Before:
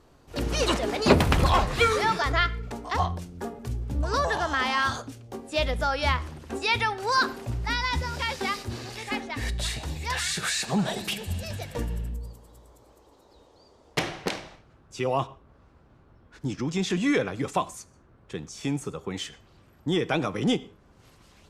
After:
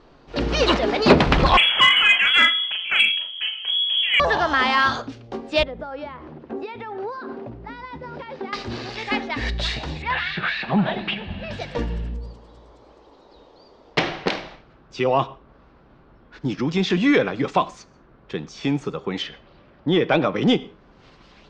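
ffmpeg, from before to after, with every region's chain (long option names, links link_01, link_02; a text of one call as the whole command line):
ffmpeg -i in.wav -filter_complex "[0:a]asettb=1/sr,asplit=3[link_01][link_02][link_03];[link_01]atrim=end=1.574[link_04];[link_02]atrim=start=1.57:end=4.2,asetpts=PTS-STARTPTS,afade=type=in:duration=0.004:curve=qsin,afade=type=out:start_time=2.626:duration=0.004:curve=qsin,asplit=2[link_05][link_06];[link_06]adelay=38,volume=-4.5dB[link_07];[link_05][link_07]amix=inputs=2:normalize=0,atrim=end_sample=115983,lowpass=frequency=2900:width_type=q:width=0.5098,lowpass=frequency=2900:width_type=q:width=0.6013,lowpass=frequency=2900:width_type=q:width=0.9,lowpass=frequency=2900:width_type=q:width=2.563,afreqshift=-3400[link_08];[link_03]atrim=start=4.196[link_09];[link_04][link_08]acrossfade=duration=0.004:curve1=hsin:curve2=qsin[link_10];[link_10][link_09]acrossfade=duration=0.004:curve1=qsin:curve2=hsin,asettb=1/sr,asplit=3[link_11][link_12][link_13];[link_11]atrim=end=5.634[link_14];[link_12]atrim=start=5.63:end=8.53,asetpts=PTS-STARTPTS,afade=type=in:duration=0.004:curve=qsin,afade=type=out:start_time=2.896:duration=0.004:curve=qsin,acompressor=threshold=-30dB:ratio=10:attack=3.2:release=140:knee=1:detection=peak,bandpass=frequency=350:width_type=q:width=0.66[link_15];[link_13]atrim=start=8.526[link_16];[link_14][link_15]acrossfade=duration=0.004:curve1=hsin:curve2=qsin[link_17];[link_17][link_16]acrossfade=duration=0.004:curve1=qsin:curve2=hsin,asettb=1/sr,asplit=3[link_18][link_19][link_20];[link_18]atrim=end=10.024[link_21];[link_19]atrim=start=10.02:end=11.51,asetpts=PTS-STARTPTS,afade=type=in:duration=0.004:curve=qsin,afade=type=out:start_time=1.486:duration=0.004:curve=qsin,lowpass=frequency=3100:width=0.5412,lowpass=frequency=3100:width=1.3066,equalizer=frequency=450:width_type=o:width=0.32:gain=-7.5[link_22];[link_20]atrim=start=11.506[link_23];[link_21][link_22]acrossfade=duration=0.004:curve1=hsin:curve2=qsin[link_24];[link_24][link_23]acrossfade=duration=0.004:curve1=qsin:curve2=hsin,asettb=1/sr,asplit=3[link_25][link_26][link_27];[link_25]atrim=end=19.224[link_28];[link_26]atrim=start=19.22:end=20.36,asetpts=PTS-STARTPTS,afade=type=in:duration=0.004:curve=qsin,afade=type=out:start_time=1.136:duration=0.004:curve=qsin,lowpass=4400,equalizer=frequency=570:width=7.2:gain=6.5[link_29];[link_27]atrim=start=20.356[link_30];[link_28][link_29]acrossfade=duration=0.004:curve1=hsin:curve2=qsin[link_31];[link_31][link_30]acrossfade=duration=0.004:curve1=qsin:curve2=hsin,lowpass=frequency=4800:width=0.5412,lowpass=frequency=4800:width=1.3066,equalizer=frequency=87:width_type=o:width=0.71:gain=-13,acontrast=85" out.wav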